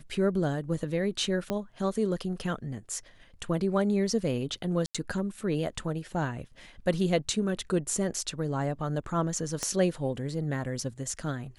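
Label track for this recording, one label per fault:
1.500000	1.500000	click −16 dBFS
4.860000	4.950000	drop-out 86 ms
9.630000	9.630000	click −17 dBFS

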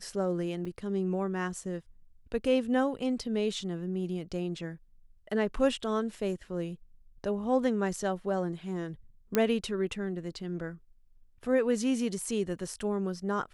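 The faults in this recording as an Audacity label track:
0.650000	0.650000	drop-out 4.3 ms
9.350000	9.350000	click −11 dBFS

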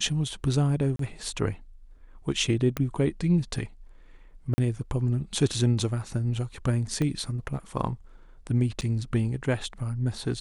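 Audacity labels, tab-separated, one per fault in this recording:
0.960000	0.990000	drop-out 33 ms
2.770000	2.770000	click −14 dBFS
4.540000	4.580000	drop-out 40 ms
7.020000	7.020000	click −17 dBFS
8.810000	8.820000	drop-out 8.3 ms

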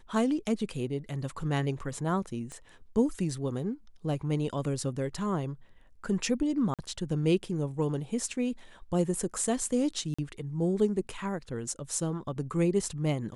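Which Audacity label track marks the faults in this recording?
2.520000	2.520000	click −29 dBFS
6.740000	6.790000	drop-out 47 ms
10.140000	10.190000	drop-out 45 ms

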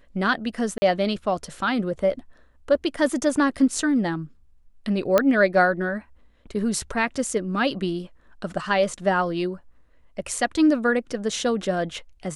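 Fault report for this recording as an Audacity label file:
0.780000	0.820000	drop-out 40 ms
5.180000	5.180000	click −5 dBFS

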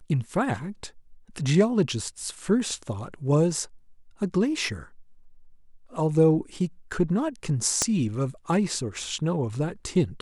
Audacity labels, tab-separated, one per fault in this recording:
7.820000	7.820000	click −8 dBFS

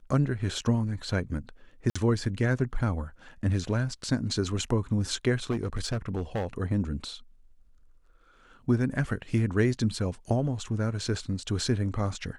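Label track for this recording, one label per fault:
1.900000	1.960000	drop-out 55 ms
5.500000	6.470000	clipping −25 dBFS

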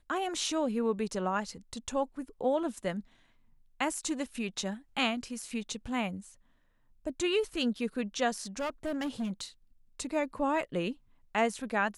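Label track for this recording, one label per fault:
8.400000	9.440000	clipping −30 dBFS

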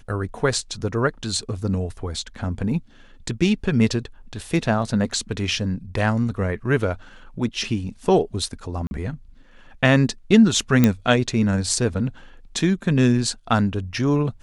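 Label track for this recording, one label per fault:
8.870000	8.910000	drop-out 41 ms
10.840000	10.840000	click −3 dBFS

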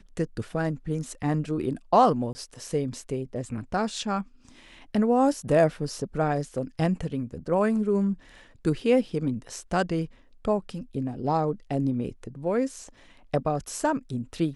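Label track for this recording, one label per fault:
2.330000	2.350000	drop-out 20 ms

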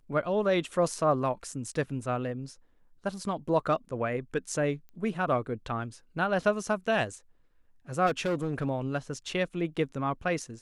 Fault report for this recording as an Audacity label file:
4.890000	4.890000	click −36 dBFS
8.060000	8.670000	clipping −24.5 dBFS

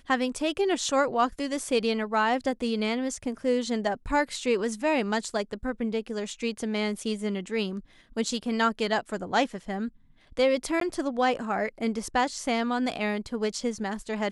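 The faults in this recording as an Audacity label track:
10.800000	10.810000	drop-out 13 ms

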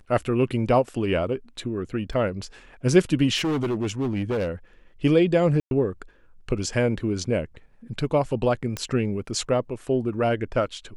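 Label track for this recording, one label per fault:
2.130000	2.130000	drop-out 2.8 ms
3.360000	4.490000	clipping −21.5 dBFS
5.600000	5.710000	drop-out 111 ms
8.770000	8.770000	click −14 dBFS

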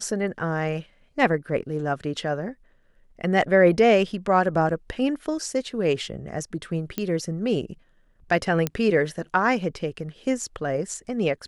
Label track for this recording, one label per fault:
6.980000	6.980000	click −13 dBFS
8.670000	8.670000	click −9 dBFS

